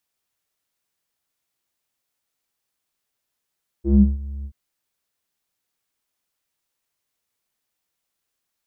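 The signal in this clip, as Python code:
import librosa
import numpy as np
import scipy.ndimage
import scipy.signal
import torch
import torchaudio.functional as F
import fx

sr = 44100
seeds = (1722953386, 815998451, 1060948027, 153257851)

y = fx.sub_voice(sr, note=37, wave='square', cutoff_hz=130.0, q=6.7, env_oct=1.5, env_s=0.3, attack_ms=107.0, decay_s=0.23, sustain_db=-17, release_s=0.07, note_s=0.61, slope=12)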